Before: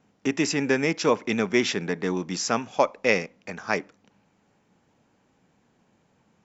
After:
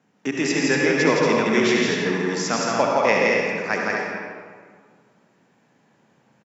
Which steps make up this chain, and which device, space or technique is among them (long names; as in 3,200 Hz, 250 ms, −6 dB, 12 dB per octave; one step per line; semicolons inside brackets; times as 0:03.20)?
stadium PA (high-pass filter 120 Hz 24 dB per octave; parametric band 1,700 Hz +5 dB 0.38 octaves; loudspeakers that aren't time-aligned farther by 57 metres −3 dB, 80 metres −6 dB; convolution reverb RT60 1.8 s, pre-delay 59 ms, DRR −0.5 dB)
level −1 dB